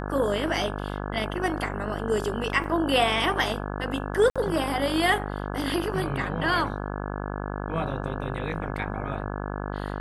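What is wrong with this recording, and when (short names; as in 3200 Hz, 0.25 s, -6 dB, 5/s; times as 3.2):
buzz 50 Hz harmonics 34 -32 dBFS
2.64 gap 2.8 ms
4.3–4.36 gap 56 ms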